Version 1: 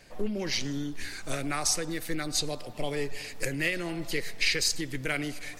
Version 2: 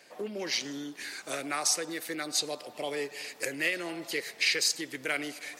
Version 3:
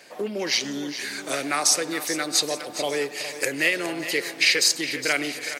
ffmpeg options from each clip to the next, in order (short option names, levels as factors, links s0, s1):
-af "highpass=340"
-af "aecho=1:1:412|824|1236|1648|2060|2472:0.251|0.133|0.0706|0.0374|0.0198|0.0105,volume=2.37"